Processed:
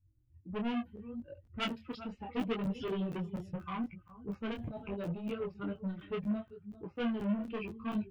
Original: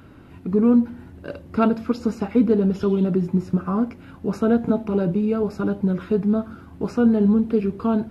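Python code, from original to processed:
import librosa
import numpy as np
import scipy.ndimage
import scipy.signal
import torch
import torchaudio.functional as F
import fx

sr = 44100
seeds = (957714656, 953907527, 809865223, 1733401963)

y = fx.bin_expand(x, sr, power=2.0)
y = fx.env_lowpass(y, sr, base_hz=420.0, full_db=-20.5)
y = fx.over_compress(y, sr, threshold_db=-35.0, ratio=-1.0, at=(4.53, 4.99), fade=0.02)
y = fx.highpass(y, sr, hz=87.0, slope=6, at=(6.31, 7.39))
y = y + 10.0 ** (-19.5 / 20.0) * np.pad(y, (int(394 * sr / 1000.0), 0))[:len(y)]
y = 10.0 ** (-26.5 / 20.0) * np.tanh(y / 10.0 ** (-26.5 / 20.0))
y = fx.peak_eq(y, sr, hz=2900.0, db=14.5, octaves=0.67)
y = fx.buffer_crackle(y, sr, first_s=0.96, period_s=0.24, block=512, kind='zero')
y = fx.detune_double(y, sr, cents=26)
y = y * 10.0 ** (-2.0 / 20.0)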